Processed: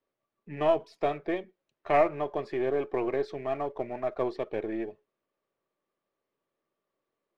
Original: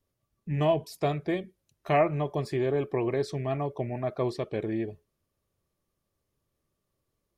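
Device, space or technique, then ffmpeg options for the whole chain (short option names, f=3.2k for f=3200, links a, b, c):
crystal radio: -af "highpass=350,lowpass=2.6k,aeval=exprs='if(lt(val(0),0),0.708*val(0),val(0))':c=same,volume=2.5dB"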